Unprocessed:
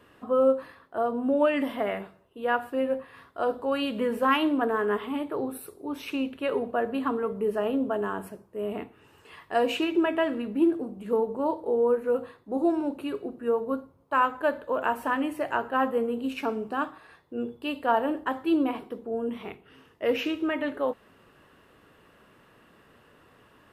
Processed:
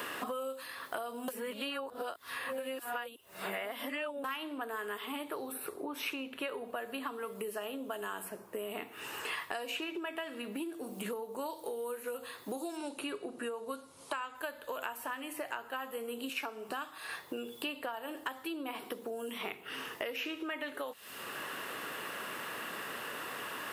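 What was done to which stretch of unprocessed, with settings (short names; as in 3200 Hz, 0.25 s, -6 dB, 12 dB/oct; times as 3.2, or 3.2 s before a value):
1.28–4.24 reverse
12.77–14.35 steep low-pass 11000 Hz 72 dB/oct
16.29–16.69 HPF 430 Hz 6 dB/oct
whole clip: compressor 4:1, threshold -40 dBFS; tilt +4 dB/oct; three-band squash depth 100%; gain +3.5 dB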